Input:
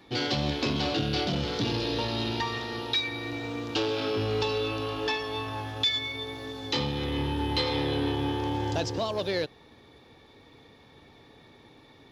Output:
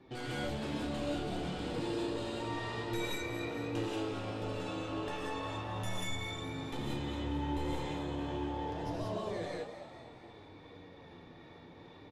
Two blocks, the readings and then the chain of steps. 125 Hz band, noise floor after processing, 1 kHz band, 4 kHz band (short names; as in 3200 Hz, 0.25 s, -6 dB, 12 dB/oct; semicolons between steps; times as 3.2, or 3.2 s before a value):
-7.5 dB, -54 dBFS, -7.0 dB, -14.5 dB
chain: tracing distortion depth 0.15 ms; LPF 5900 Hz 12 dB/oct; bell 4100 Hz -7.5 dB 2 oct; in parallel at -0.5 dB: compressor, threshold -46 dBFS, peak gain reduction 19.5 dB; on the sum: limiter -24.5 dBFS, peak gain reduction 10 dB; harmonic tremolo 2.5 Hz, depth 50%, crossover 530 Hz; flange 0.31 Hz, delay 7.6 ms, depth 4.7 ms, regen +47%; on a send: frequency-shifting echo 0.226 s, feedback 52%, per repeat +78 Hz, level -10 dB; on the sum: non-linear reverb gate 0.21 s rising, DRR -3.5 dB; gain -3 dB